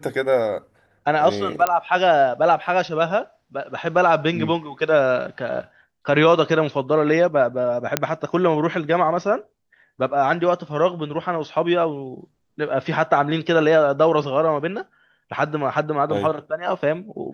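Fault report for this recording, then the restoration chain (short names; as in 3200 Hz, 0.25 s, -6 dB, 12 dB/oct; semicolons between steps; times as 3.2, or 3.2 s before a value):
1.67 pop -5 dBFS
7.97 pop -1 dBFS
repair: de-click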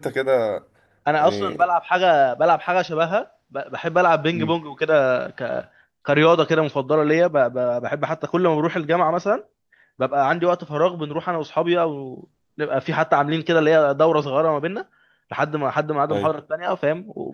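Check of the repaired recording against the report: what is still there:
none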